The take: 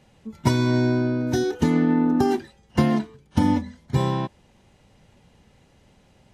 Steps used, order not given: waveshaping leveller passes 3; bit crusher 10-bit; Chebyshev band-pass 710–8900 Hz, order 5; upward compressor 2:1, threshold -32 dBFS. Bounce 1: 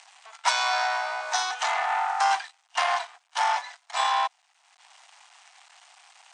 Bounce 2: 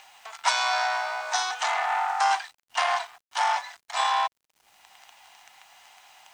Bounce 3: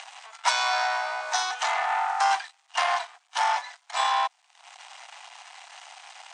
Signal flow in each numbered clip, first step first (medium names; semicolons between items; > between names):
waveshaping leveller > bit crusher > upward compressor > Chebyshev band-pass; waveshaping leveller > Chebyshev band-pass > upward compressor > bit crusher; upward compressor > waveshaping leveller > bit crusher > Chebyshev band-pass